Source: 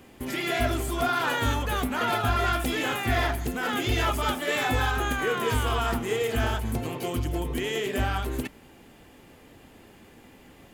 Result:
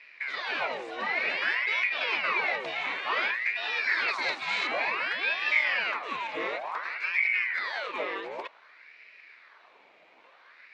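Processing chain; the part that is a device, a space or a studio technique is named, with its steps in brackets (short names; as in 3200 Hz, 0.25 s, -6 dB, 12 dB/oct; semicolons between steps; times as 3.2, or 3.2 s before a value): voice changer toy (ring modulator with a swept carrier 1300 Hz, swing 70%, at 0.55 Hz; speaker cabinet 550–4300 Hz, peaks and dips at 800 Hz -5 dB, 1300 Hz -4 dB, 2300 Hz +7 dB, 3200 Hz -5 dB); 4.08–4.67 band shelf 6300 Hz +9.5 dB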